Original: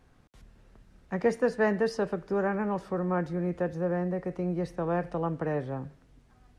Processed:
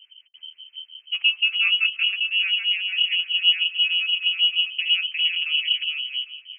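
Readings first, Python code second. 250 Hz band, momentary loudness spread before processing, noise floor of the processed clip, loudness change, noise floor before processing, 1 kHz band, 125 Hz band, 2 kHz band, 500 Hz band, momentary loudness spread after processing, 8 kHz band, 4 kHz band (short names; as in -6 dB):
under -40 dB, 6 LU, -56 dBFS, +10.5 dB, -61 dBFS, under -15 dB, under -40 dB, +16.0 dB, under -40 dB, 11 LU, n/a, +37.5 dB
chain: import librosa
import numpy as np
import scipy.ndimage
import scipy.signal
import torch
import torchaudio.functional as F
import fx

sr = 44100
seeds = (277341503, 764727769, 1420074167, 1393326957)

p1 = fx.tilt_eq(x, sr, slope=-4.5)
p2 = p1 + fx.echo_feedback(p1, sr, ms=401, feedback_pct=19, wet_db=-3.5, dry=0)
p3 = fx.harmonic_tremolo(p2, sr, hz=6.3, depth_pct=100, crossover_hz=460.0)
p4 = fx.graphic_eq_10(p3, sr, hz=(125, 250, 500, 1000), db=(8, 7, 9, 7))
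p5 = fx.freq_invert(p4, sr, carrier_hz=3100)
y = p5 * librosa.db_to_amplitude(-7.5)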